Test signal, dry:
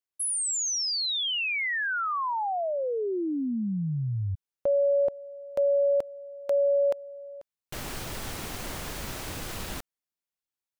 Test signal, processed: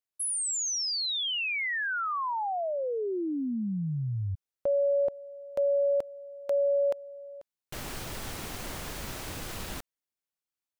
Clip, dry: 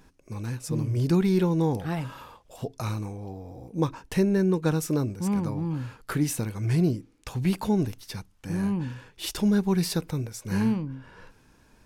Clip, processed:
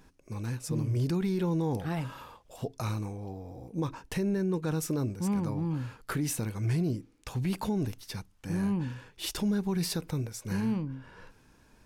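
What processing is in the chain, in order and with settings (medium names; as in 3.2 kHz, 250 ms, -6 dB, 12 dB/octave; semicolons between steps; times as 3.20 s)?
peak limiter -20 dBFS; trim -2 dB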